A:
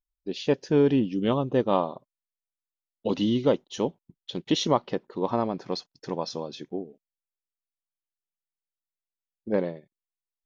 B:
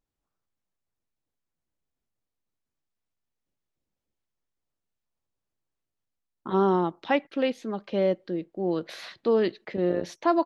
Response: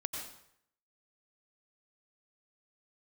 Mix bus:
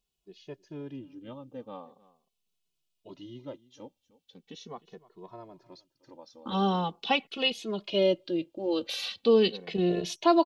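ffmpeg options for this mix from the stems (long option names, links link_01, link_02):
-filter_complex "[0:a]volume=-16.5dB,asplit=2[link_01][link_02];[link_02]volume=-20dB[link_03];[1:a]highshelf=frequency=2300:width_type=q:width=3:gain=7,volume=2dB[link_04];[link_03]aecho=0:1:307:1[link_05];[link_01][link_04][link_05]amix=inputs=3:normalize=0,asplit=2[link_06][link_07];[link_07]adelay=2.3,afreqshift=-0.41[link_08];[link_06][link_08]amix=inputs=2:normalize=1"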